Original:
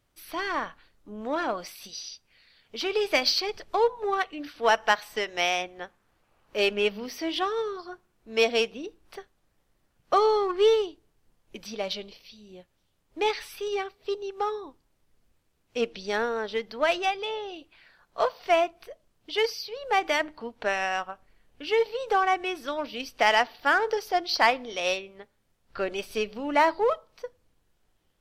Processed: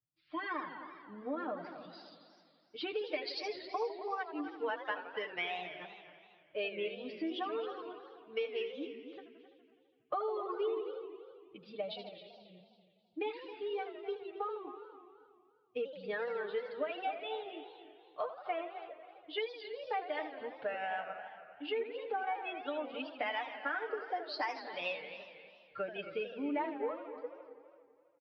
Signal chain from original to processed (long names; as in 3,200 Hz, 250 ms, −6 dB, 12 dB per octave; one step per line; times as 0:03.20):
spectral dynamics exaggerated over time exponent 1.5
high-pass filter 77 Hz 12 dB per octave
three-way crossover with the lows and the highs turned down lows −14 dB, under 170 Hz, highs −16 dB, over 3,200 Hz
comb filter 6.6 ms, depth 82%
downward compressor, threshold −35 dBFS, peak gain reduction 20 dB
on a send: repeating echo 269 ms, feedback 30%, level −13 dB
on the sum: downsampling to 11,025 Hz
feedback echo with a swinging delay time 83 ms, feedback 77%, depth 218 cents, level −12 dB